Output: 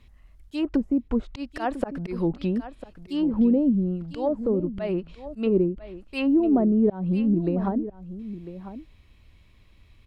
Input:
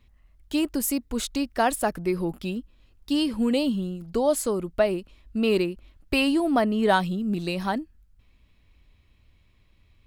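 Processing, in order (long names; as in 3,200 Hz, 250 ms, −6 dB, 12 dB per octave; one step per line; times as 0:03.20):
volume swells 214 ms
treble cut that deepens with the level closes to 400 Hz, closed at −23 dBFS
single-tap delay 999 ms −13.5 dB
level +5 dB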